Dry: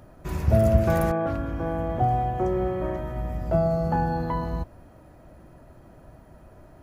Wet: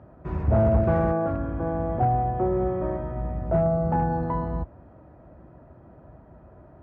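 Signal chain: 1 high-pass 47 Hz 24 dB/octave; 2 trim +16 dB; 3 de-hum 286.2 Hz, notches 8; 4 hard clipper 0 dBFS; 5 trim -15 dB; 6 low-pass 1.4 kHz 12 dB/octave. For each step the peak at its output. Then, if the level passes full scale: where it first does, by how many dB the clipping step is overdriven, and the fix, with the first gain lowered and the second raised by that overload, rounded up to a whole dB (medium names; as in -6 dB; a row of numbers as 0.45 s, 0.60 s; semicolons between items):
-7.0 dBFS, +9.0 dBFS, +9.0 dBFS, 0.0 dBFS, -15.0 dBFS, -14.5 dBFS; step 2, 9.0 dB; step 2 +7 dB, step 5 -6 dB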